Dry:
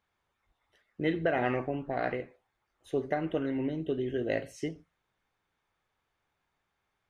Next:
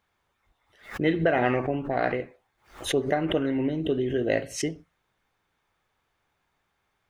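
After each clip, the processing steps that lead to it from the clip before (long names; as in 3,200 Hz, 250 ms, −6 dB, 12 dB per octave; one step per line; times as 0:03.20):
background raised ahead of every attack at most 140 dB per second
level +5.5 dB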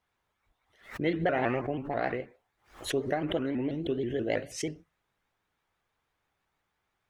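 pitch modulation by a square or saw wave saw up 6.2 Hz, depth 160 cents
level −5 dB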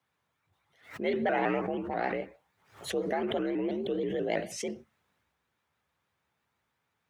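transient designer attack −4 dB, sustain +4 dB
frequency shifter +60 Hz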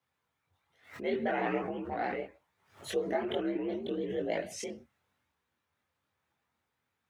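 multi-voice chorus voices 6, 0.66 Hz, delay 23 ms, depth 2.3 ms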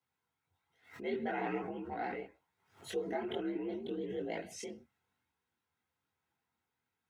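notch comb filter 590 Hz
level −4 dB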